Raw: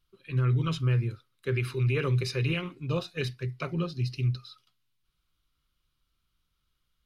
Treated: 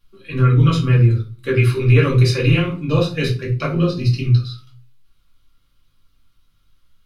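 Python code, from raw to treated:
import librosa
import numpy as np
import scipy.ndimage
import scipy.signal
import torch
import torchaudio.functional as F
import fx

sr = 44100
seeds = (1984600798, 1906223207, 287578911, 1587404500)

y = fx.room_shoebox(x, sr, seeds[0], volume_m3=190.0, walls='furnished', distance_m=2.3)
y = y * librosa.db_to_amplitude(7.0)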